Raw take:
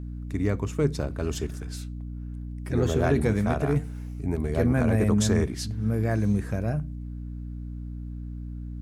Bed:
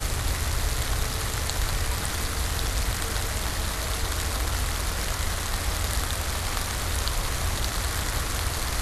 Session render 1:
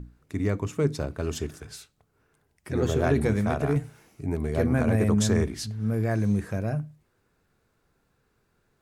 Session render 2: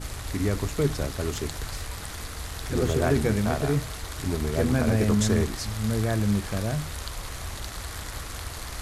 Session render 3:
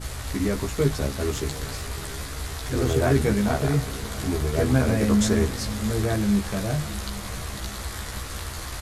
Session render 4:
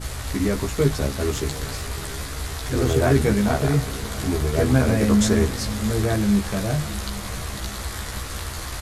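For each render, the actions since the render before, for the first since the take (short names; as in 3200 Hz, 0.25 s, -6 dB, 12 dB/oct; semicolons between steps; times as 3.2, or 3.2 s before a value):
notches 60/120/180/240/300 Hz
add bed -8 dB
doubler 15 ms -2.5 dB; diffused feedback echo 0.695 s, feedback 46%, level -15.5 dB
gain +2.5 dB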